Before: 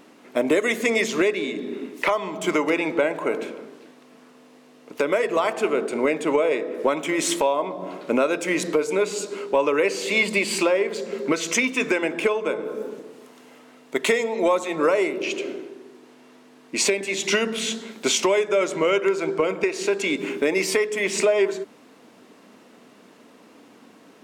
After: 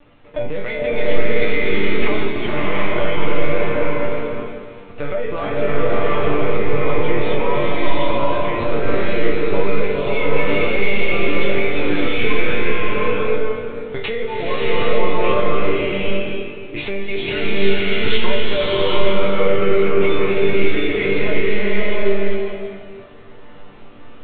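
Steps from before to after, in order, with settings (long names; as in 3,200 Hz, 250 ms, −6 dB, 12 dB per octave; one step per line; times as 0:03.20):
delay that plays each chunk backwards 266 ms, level −8.5 dB
linear-prediction vocoder at 8 kHz pitch kept
resonators tuned to a chord G2 minor, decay 0.32 s
boost into a limiter +26 dB
slow-attack reverb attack 770 ms, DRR −6 dB
level −12 dB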